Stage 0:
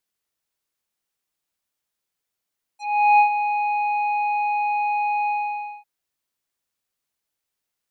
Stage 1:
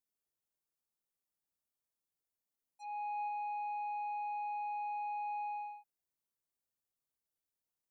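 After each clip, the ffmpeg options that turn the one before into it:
-af "equalizer=f=2.7k:w=0.53:g=-9.5,areverse,acompressor=threshold=-30dB:ratio=12,areverse,volume=-8dB"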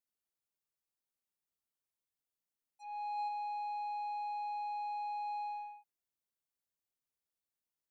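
-af "aeval=exprs='0.0168*(cos(1*acos(clip(val(0)/0.0168,-1,1)))-cos(1*PI/2))+0.00266*(cos(3*acos(clip(val(0)/0.0168,-1,1)))-cos(3*PI/2))+0.000106*(cos(4*acos(clip(val(0)/0.0168,-1,1)))-cos(4*PI/2))+0.000299*(cos(5*acos(clip(val(0)/0.0168,-1,1)))-cos(5*PI/2))':c=same,volume=1dB"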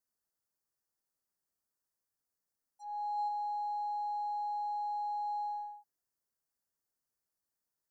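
-af "asuperstop=centerf=2900:order=8:qfactor=1.2,volume=3dB"

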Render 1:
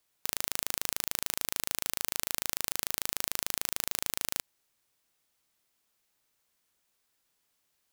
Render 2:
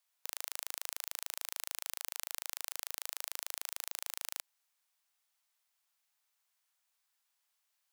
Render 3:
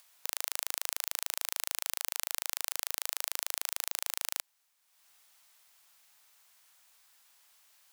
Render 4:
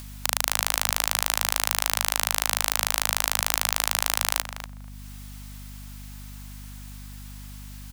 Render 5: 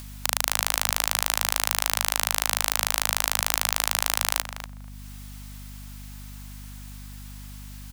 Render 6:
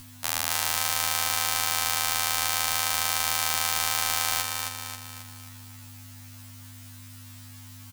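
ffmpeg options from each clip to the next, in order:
-af "highpass=f=690:w=0.5412,highpass=f=690:w=1.3066,alimiter=limit=-7dB:level=0:latency=1:release=29,volume=-4.5dB"
-af "acompressor=mode=upward:threshold=-59dB:ratio=2.5,volume=6dB"
-filter_complex "[0:a]asplit=2[a][b];[b]adelay=241,lowpass=f=1.1k:p=1,volume=-5dB,asplit=2[c][d];[d]adelay=241,lowpass=f=1.1k:p=1,volume=0.17,asplit=2[e][f];[f]adelay=241,lowpass=f=1.1k:p=1,volume=0.17[g];[a][c][e][g]amix=inputs=4:normalize=0,aeval=exprs='val(0)+0.00178*(sin(2*PI*50*n/s)+sin(2*PI*2*50*n/s)/2+sin(2*PI*3*50*n/s)/3+sin(2*PI*4*50*n/s)/4+sin(2*PI*5*50*n/s)/5)':c=same,apsyclip=17dB,volume=-1.5dB"
-af anull
-filter_complex "[0:a]asplit=2[a][b];[b]aecho=0:1:269|538|807|1076|1345|1614:0.562|0.287|0.146|0.0746|0.038|0.0194[c];[a][c]amix=inputs=2:normalize=0,afftfilt=real='re*2*eq(mod(b,4),0)':imag='im*2*eq(mod(b,4),0)':win_size=2048:overlap=0.75"

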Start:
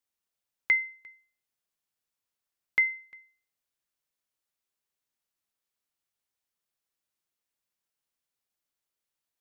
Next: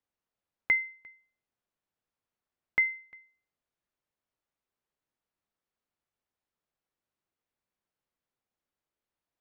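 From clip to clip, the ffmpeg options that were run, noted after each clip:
-af "lowpass=f=1.1k:p=1,volume=5dB"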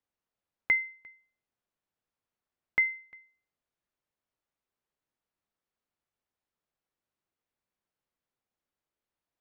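-af anull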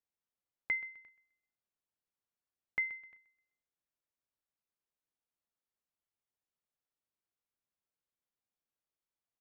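-af "aecho=1:1:128|256|384:0.133|0.04|0.012,volume=-8.5dB"

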